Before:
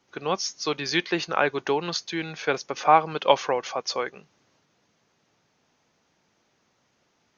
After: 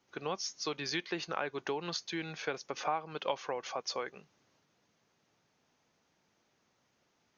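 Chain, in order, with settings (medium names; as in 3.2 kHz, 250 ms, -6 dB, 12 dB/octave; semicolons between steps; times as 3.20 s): compression 3:1, threshold -27 dBFS, peak gain reduction 12.5 dB; trim -6 dB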